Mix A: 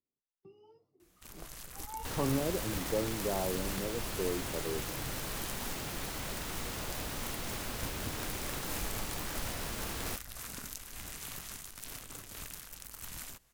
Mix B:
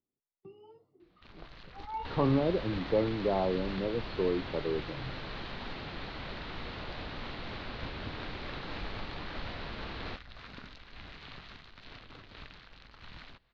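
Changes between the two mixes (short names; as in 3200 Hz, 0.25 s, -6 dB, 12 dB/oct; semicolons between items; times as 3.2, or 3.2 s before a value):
speech +6.0 dB; master: add elliptic low-pass 4200 Hz, stop band 60 dB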